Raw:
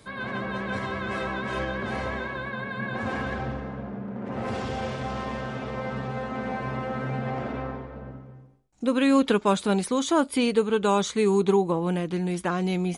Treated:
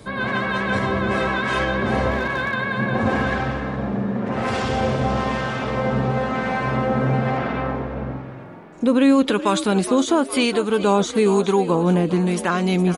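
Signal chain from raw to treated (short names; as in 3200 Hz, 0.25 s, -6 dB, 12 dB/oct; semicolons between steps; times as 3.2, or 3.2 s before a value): 7.37–8.23 LPF 4700 Hz 12 dB/oct; in parallel at -3 dB: vocal rider within 4 dB 0.5 s; on the sum: harmonic tremolo 1 Hz, depth 50%, crossover 920 Hz; 2.11–2.54 hard clip -22 dBFS, distortion -38 dB; on a send: frequency-shifting echo 0.415 s, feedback 55%, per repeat +44 Hz, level -15 dB; on the sum: maximiser +12 dB; gain -7 dB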